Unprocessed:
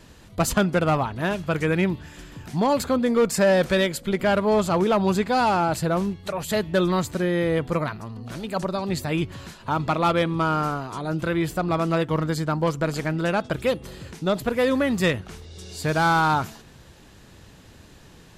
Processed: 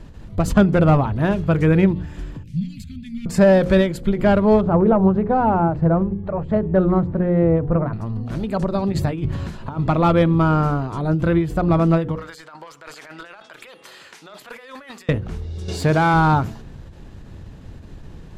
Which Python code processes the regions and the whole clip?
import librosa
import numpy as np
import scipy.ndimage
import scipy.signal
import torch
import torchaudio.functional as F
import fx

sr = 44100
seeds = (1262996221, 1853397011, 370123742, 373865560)

y = fx.chain(x, sr, fx.ellip_bandstop(low_hz=190.0, high_hz=2400.0, order=3, stop_db=50),
    fx.hum_notches(base_hz=50, count=3),
    fx.upward_expand(threshold_db=-38.0, expansion=1.5), at=(2.43, 3.26))
y = fx.chain(y, sr, fx.lowpass(hz=1200.0, slope=12),
    fx.hum_notches(base_hz=50, count=8),
    fx.doppler_dist(depth_ms=0.13), at=(4.61, 7.93))
y = fx.chain(y, sr, fx.hum_notches(base_hz=50, count=5),
    fx.over_compress(threshold_db=-28.0, ratio=-0.5), at=(8.92, 9.84))
y = fx.chain(y, sr, fx.highpass(hz=1300.0, slope=12),
    fx.over_compress(threshold_db=-40.0, ratio=-1.0),
    fx.overload_stage(gain_db=27.5), at=(12.15, 15.09))
y = fx.chain(y, sr, fx.self_delay(depth_ms=0.051),
    fx.highpass(hz=230.0, slope=6),
    fx.env_flatten(amount_pct=50), at=(15.68, 16.14))
y = fx.tilt_eq(y, sr, slope=-3.0)
y = fx.hum_notches(y, sr, base_hz=60, count=9)
y = fx.end_taper(y, sr, db_per_s=120.0)
y = F.gain(torch.from_numpy(y), 2.5).numpy()